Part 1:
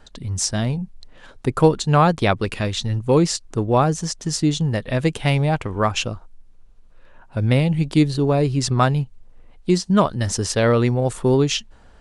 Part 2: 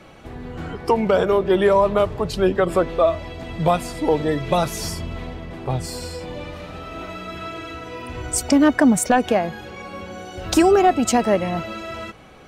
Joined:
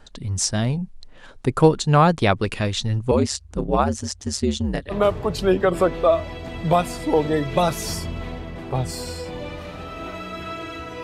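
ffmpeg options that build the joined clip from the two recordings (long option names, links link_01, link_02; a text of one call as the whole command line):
ffmpeg -i cue0.wav -i cue1.wav -filter_complex "[0:a]asettb=1/sr,asplit=3[link_01][link_02][link_03];[link_01]atrim=end=3.114[link_04];[link_02]atrim=start=3.11:end=4.95,asetpts=PTS-STARTPTS,afade=type=in:duration=0.004:curve=qsin,afade=type=out:start_time=1.836:duration=0.004:curve=qsin,aeval=exprs='val(0)*sin(2*PI*69*n/s)':channel_layout=same[link_05];[link_03]atrim=start=4.946[link_06];[link_04][link_05]acrossfade=duration=0.004:curve1=hsin:curve2=qsin[link_07];[link_07][link_06]acrossfade=duration=0.004:curve1=qsin:curve2=hsin,apad=whole_dur=11.03,atrim=end=11.03,atrim=end=4.95,asetpts=PTS-STARTPTS[link_08];[1:a]atrim=start=1.84:end=7.98,asetpts=PTS-STARTPTS[link_09];[link_08][link_09]acrossfade=duration=0.06:curve1=tri:curve2=tri" out.wav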